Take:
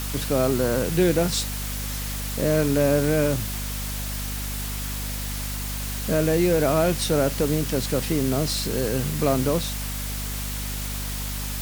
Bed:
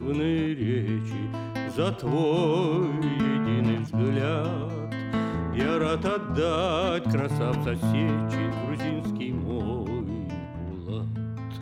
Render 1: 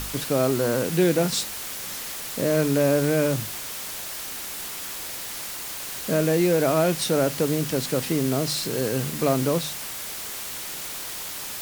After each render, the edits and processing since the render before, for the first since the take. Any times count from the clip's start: de-hum 50 Hz, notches 5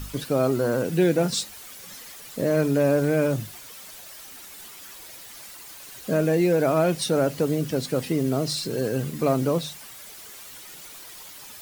denoiser 11 dB, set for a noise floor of -34 dBFS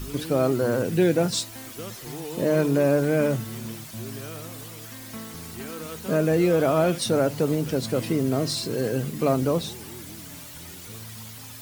add bed -12 dB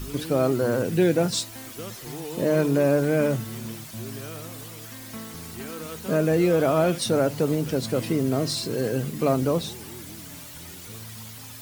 nothing audible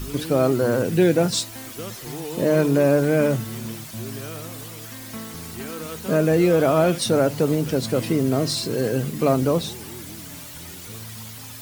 gain +3 dB

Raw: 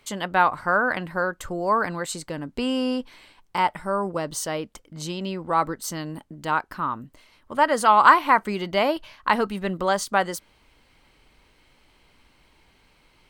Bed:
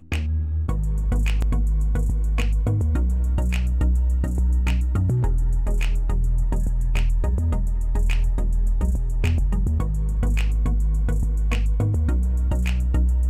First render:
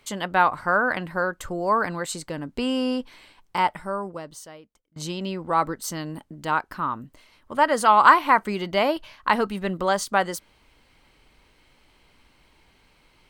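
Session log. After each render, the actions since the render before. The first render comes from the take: 3.67–4.96 fade out quadratic, to -24 dB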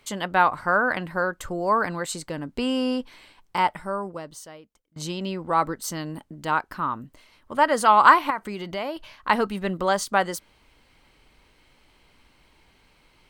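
8.3–9.29 compressor 2:1, threshold -32 dBFS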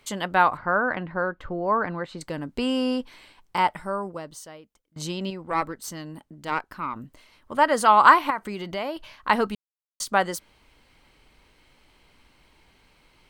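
0.57–2.21 air absorption 350 m; 5.3–6.96 tube stage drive 12 dB, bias 0.75; 9.55–10 mute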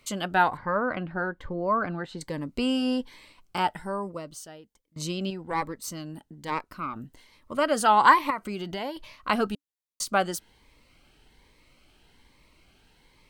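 cascading phaser rising 1.2 Hz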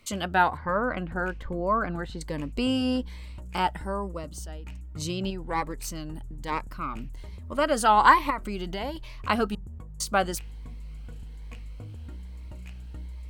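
add bed -19.5 dB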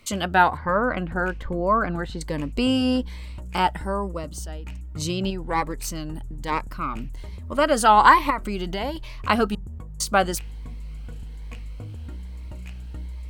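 gain +4.5 dB; limiter -3 dBFS, peak gain reduction 2.5 dB

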